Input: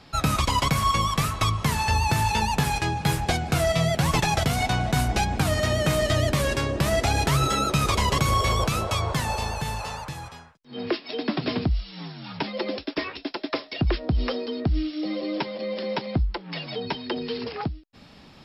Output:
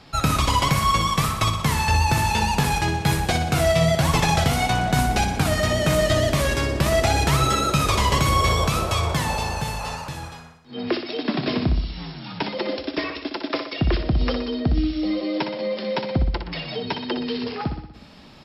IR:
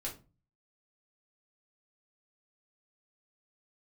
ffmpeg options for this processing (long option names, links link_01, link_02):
-af "aecho=1:1:61|122|183|244|305|366|427:0.398|0.231|0.134|0.0777|0.0451|0.0261|0.0152,volume=2dB"